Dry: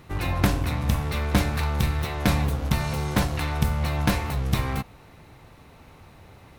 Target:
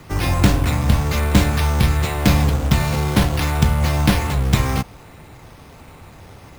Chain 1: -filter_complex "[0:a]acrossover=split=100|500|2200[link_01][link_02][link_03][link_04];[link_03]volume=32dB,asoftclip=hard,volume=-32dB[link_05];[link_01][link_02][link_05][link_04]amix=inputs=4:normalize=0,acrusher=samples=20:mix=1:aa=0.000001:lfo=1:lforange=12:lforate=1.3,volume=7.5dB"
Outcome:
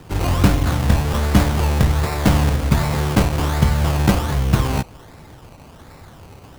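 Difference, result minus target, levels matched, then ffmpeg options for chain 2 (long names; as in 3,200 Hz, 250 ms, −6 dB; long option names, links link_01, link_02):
sample-and-hold swept by an LFO: distortion +6 dB
-filter_complex "[0:a]acrossover=split=100|500|2200[link_01][link_02][link_03][link_04];[link_03]volume=32dB,asoftclip=hard,volume=-32dB[link_05];[link_01][link_02][link_05][link_04]amix=inputs=4:normalize=0,acrusher=samples=5:mix=1:aa=0.000001:lfo=1:lforange=3:lforate=1.3,volume=7.5dB"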